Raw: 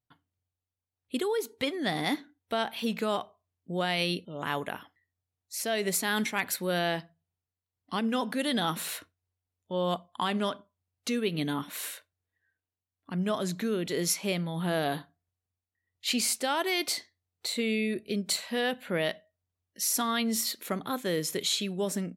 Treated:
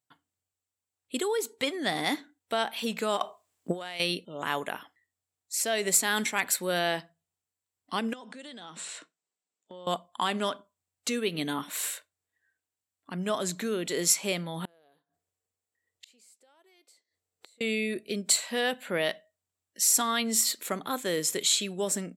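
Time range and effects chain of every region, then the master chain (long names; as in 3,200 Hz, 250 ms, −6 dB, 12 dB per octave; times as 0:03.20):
0:03.17–0:04.00: low-shelf EQ 170 Hz −11.5 dB + compressor whose output falls as the input rises −39 dBFS + transient designer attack +11 dB, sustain +5 dB
0:08.13–0:09.87: Chebyshev band-pass filter 150–8,400 Hz, order 4 + downward compressor 12 to 1, threshold −41 dBFS
0:14.65–0:17.61: parametric band 480 Hz +9 dB 0.66 octaves + downward compressor 3 to 1, threshold −28 dBFS + gate with flip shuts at −35 dBFS, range −33 dB
whole clip: high-pass filter 310 Hz 6 dB per octave; parametric band 7,700 Hz +10.5 dB 0.3 octaves; level +2 dB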